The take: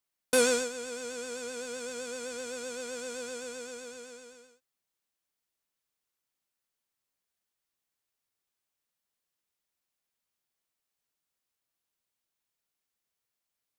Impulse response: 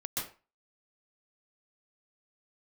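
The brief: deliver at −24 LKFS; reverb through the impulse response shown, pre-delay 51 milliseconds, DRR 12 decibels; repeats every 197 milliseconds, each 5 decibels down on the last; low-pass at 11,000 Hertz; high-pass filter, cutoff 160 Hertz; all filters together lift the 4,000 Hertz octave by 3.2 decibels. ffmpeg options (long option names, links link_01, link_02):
-filter_complex "[0:a]highpass=160,lowpass=11000,equalizer=frequency=4000:width_type=o:gain=4,aecho=1:1:197|394|591|788|985|1182|1379:0.562|0.315|0.176|0.0988|0.0553|0.031|0.0173,asplit=2[link_01][link_02];[1:a]atrim=start_sample=2205,adelay=51[link_03];[link_02][link_03]afir=irnorm=-1:irlink=0,volume=-15dB[link_04];[link_01][link_04]amix=inputs=2:normalize=0,volume=7.5dB"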